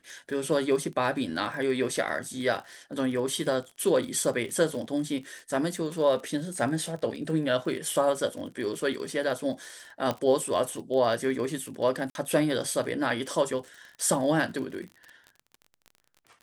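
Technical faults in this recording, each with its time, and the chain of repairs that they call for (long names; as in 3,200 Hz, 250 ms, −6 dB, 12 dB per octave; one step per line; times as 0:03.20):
surface crackle 35 per second −36 dBFS
0:10.11: click −15 dBFS
0:12.10–0:12.15: drop-out 51 ms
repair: click removal
repair the gap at 0:12.10, 51 ms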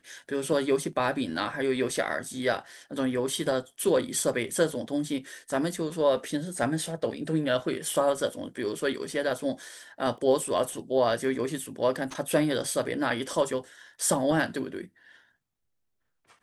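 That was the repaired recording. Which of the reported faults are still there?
none of them is left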